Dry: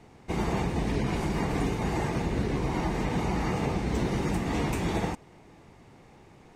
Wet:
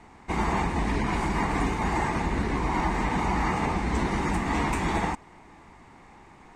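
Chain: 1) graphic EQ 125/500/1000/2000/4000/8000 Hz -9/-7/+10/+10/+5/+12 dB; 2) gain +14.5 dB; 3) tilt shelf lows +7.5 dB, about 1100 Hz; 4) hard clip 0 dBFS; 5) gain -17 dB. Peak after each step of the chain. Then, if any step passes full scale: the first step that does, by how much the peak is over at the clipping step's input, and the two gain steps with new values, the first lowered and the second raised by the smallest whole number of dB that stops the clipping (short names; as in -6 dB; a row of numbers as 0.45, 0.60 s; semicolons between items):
-12.5, +2.0, +3.5, 0.0, -17.0 dBFS; step 2, 3.5 dB; step 2 +10.5 dB, step 5 -13 dB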